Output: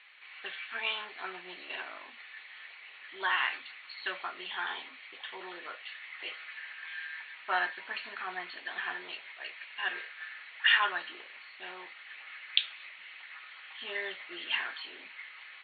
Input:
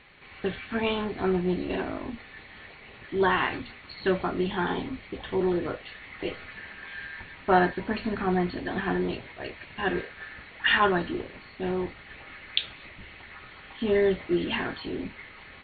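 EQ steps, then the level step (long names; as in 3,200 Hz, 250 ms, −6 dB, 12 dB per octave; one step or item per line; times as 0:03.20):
high-pass filter 1,400 Hz 12 dB per octave
high-frequency loss of the air 110 metres
parametric band 2,900 Hz +3 dB 0.83 octaves
0.0 dB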